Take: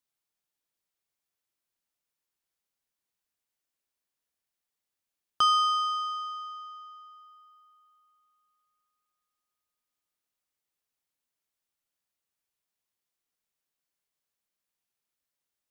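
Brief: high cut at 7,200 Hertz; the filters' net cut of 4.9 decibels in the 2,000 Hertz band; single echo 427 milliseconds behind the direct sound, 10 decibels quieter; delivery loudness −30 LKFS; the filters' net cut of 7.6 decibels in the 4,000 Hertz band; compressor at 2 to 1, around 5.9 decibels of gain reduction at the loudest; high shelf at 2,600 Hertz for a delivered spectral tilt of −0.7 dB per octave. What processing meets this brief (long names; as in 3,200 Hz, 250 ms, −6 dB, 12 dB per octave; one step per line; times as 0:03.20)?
low-pass filter 7,200 Hz
parametric band 2,000 Hz −5 dB
high-shelf EQ 2,600 Hz −5.5 dB
parametric band 4,000 Hz −3.5 dB
downward compressor 2 to 1, threshold −34 dBFS
single-tap delay 427 ms −10 dB
level +5 dB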